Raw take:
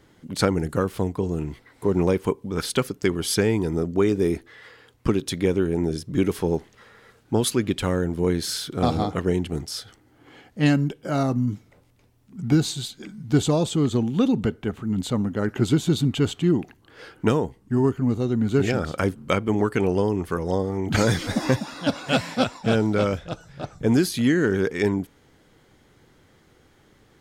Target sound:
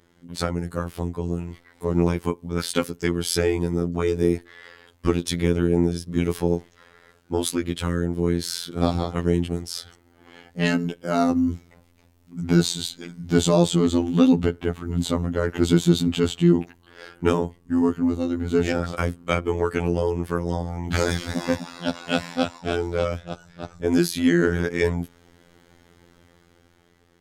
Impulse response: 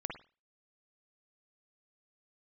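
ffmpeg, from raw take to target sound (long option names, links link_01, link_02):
-af "afftfilt=real='hypot(re,im)*cos(PI*b)':imag='0':win_size=2048:overlap=0.75,dynaudnorm=framelen=380:gausssize=7:maxgain=11.5dB,volume=-1dB"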